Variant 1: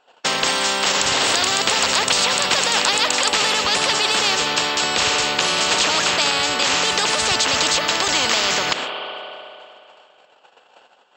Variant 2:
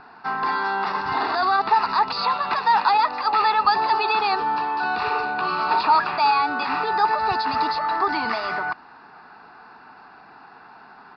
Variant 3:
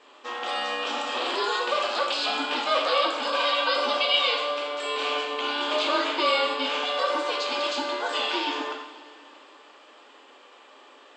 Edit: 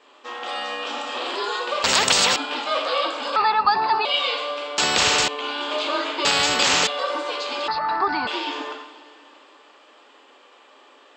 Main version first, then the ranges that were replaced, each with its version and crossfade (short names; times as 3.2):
3
1.84–2.36 from 1
3.36–4.05 from 2
4.78–5.28 from 1
6.25–6.87 from 1
7.68–8.27 from 2